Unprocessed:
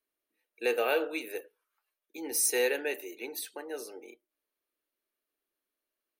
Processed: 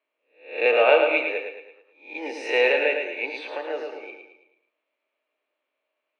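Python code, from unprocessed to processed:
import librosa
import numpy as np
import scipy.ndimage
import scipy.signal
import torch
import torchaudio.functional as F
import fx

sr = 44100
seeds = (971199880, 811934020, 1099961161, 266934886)

y = fx.spec_swells(x, sr, rise_s=0.43)
y = fx.cabinet(y, sr, low_hz=290.0, low_slope=24, high_hz=3200.0, hz=(370.0, 610.0, 960.0, 1600.0, 2400.0), db=(-7, 8, 4, -4, 8))
y = fx.echo_feedback(y, sr, ms=110, feedback_pct=45, wet_db=-6)
y = F.gain(torch.from_numpy(y), 6.5).numpy()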